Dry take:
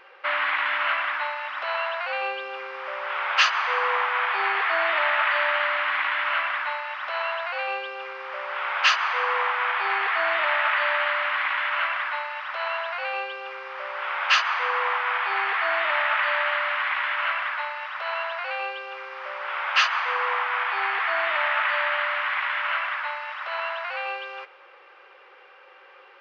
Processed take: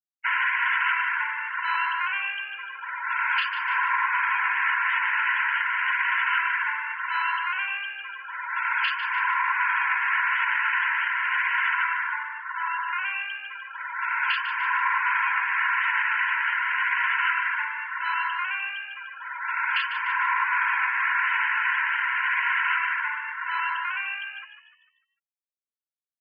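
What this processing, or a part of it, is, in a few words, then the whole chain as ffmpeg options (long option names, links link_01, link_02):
PA system with an anti-feedback notch: -filter_complex "[0:a]asettb=1/sr,asplit=3[link_01][link_02][link_03];[link_01]atrim=end=11.744[link_04];[link_02]atrim=start=11.74:end=12.88,asetpts=PTS-STARTPTS,afade=type=in:duration=0.004:curve=qsin,afade=type=out:start_time=1.136:duration=0.004:curve=qsin,lowpass=frequency=1900:poles=1[link_05];[link_03]atrim=start=12.876[link_06];[link_04][link_05]acrossfade=duration=0.004:curve1=hsin:curve2=qsin[link_07];[link_07][link_06]acrossfade=duration=0.004:curve1=qsin:curve2=hsin,highpass=150,asuperstop=centerf=1200:order=20:qfactor=5,alimiter=limit=-17dB:level=0:latency=1:release=487,afftfilt=real='re*gte(hypot(re,im),0.0398)':imag='im*gte(hypot(re,im),0.0398)':win_size=1024:overlap=0.75,firequalizer=gain_entry='entry(110,0);entry(210,-22);entry(300,-8);entry(460,-22);entry(660,-24);entry(970,14);entry(2900,10);entry(9100,-15)':delay=0.05:min_phase=1,asplit=6[link_08][link_09][link_10][link_11][link_12][link_13];[link_09]adelay=149,afreqshift=64,volume=-10.5dB[link_14];[link_10]adelay=298,afreqshift=128,volume=-17.8dB[link_15];[link_11]adelay=447,afreqshift=192,volume=-25.2dB[link_16];[link_12]adelay=596,afreqshift=256,volume=-32.5dB[link_17];[link_13]adelay=745,afreqshift=320,volume=-39.8dB[link_18];[link_08][link_14][link_15][link_16][link_17][link_18]amix=inputs=6:normalize=0,volume=-8.5dB"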